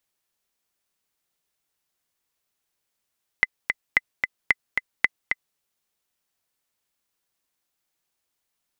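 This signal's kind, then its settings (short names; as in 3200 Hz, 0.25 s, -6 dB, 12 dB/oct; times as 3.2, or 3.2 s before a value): metronome 223 bpm, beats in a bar 2, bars 4, 2030 Hz, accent 5 dB -3.5 dBFS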